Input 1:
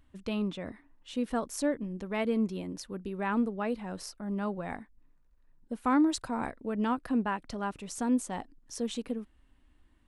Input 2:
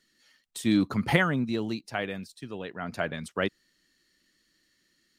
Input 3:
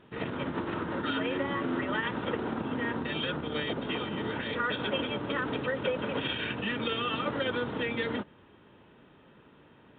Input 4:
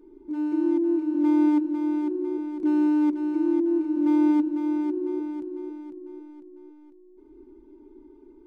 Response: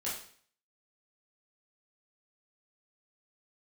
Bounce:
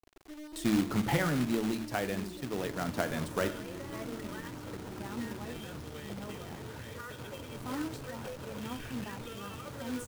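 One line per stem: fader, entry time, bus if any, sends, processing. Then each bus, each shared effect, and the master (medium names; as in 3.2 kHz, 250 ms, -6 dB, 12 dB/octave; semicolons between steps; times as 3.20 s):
-9.0 dB, 1.80 s, bus B, send -17.5 dB, flange 0.29 Hz, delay 8.1 ms, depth 5.5 ms, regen -44%; decay stretcher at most 78 dB/s
+2.0 dB, 0.00 s, bus B, send -16 dB, none
-7.0 dB, 2.40 s, bus A, send -22 dB, none
-13.0 dB, 0.00 s, bus A, send -13 dB, single-diode clipper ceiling -22 dBFS; low-pass 1.1 kHz 24 dB/octave; compression 3:1, threshold -29 dBFS, peak gain reduction 7.5 dB
bus A: 0.0 dB, resonant low shelf 150 Hz +9.5 dB, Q 1.5; compression 2.5:1, threshold -42 dBFS, peak gain reduction 7 dB
bus B: 0.0 dB, gate -52 dBFS, range -19 dB; compression 4:1, threshold -28 dBFS, peak gain reduction 12 dB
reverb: on, RT60 0.50 s, pre-delay 14 ms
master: treble shelf 2 kHz -9 dB; de-hum 55.8 Hz, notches 5; companded quantiser 4-bit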